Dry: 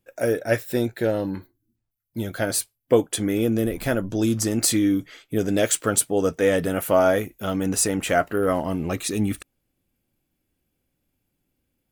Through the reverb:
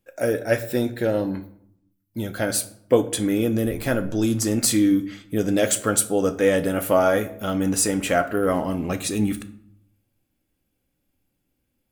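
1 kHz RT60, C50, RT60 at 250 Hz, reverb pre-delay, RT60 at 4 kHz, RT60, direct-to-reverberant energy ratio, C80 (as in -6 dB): 0.70 s, 15.0 dB, 0.95 s, 4 ms, 0.45 s, 0.70 s, 9.0 dB, 18.0 dB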